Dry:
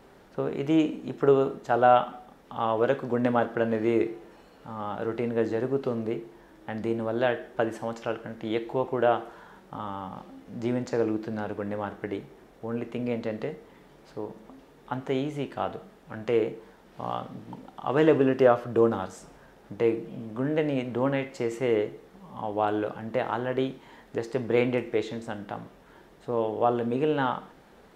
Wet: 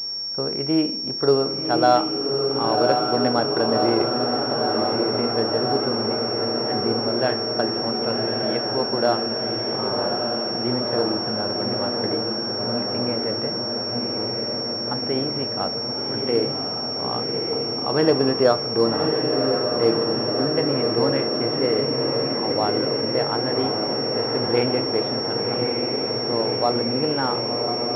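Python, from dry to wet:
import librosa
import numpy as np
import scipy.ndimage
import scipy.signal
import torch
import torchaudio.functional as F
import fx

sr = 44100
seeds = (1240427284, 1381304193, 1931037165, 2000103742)

y = fx.echo_diffused(x, sr, ms=1111, feedback_pct=75, wet_db=-3)
y = fx.pwm(y, sr, carrier_hz=5500.0)
y = y * librosa.db_to_amplitude(2.0)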